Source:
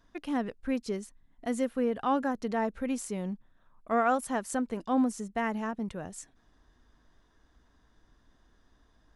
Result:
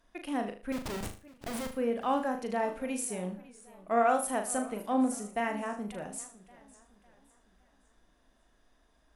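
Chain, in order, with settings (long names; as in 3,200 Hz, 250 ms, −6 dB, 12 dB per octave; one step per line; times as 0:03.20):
graphic EQ with 15 bands 100 Hz −10 dB, 630 Hz +6 dB, 2,500 Hz +6 dB, 10,000 Hz +12 dB
0:00.72–0:01.72: comparator with hysteresis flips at −35.5 dBFS
on a send: flutter between parallel walls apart 6.6 metres, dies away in 0.36 s
on the sum: feedback echo with a swinging delay time 558 ms, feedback 41%, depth 165 cents, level −20 dB
level −4.5 dB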